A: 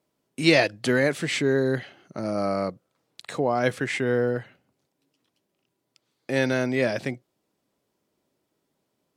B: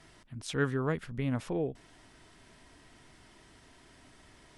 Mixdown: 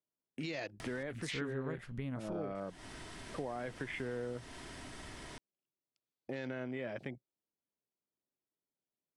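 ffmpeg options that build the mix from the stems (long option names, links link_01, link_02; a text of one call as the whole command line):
ffmpeg -i stem1.wav -i stem2.wav -filter_complex "[0:a]afwtdn=0.0158,alimiter=limit=-15dB:level=0:latency=1,volume=-7.5dB[link_01];[1:a]acompressor=mode=upward:threshold=-37dB:ratio=2.5,adelay=800,volume=-0.5dB[link_02];[link_01][link_02]amix=inputs=2:normalize=0,acompressor=threshold=-39dB:ratio=3" out.wav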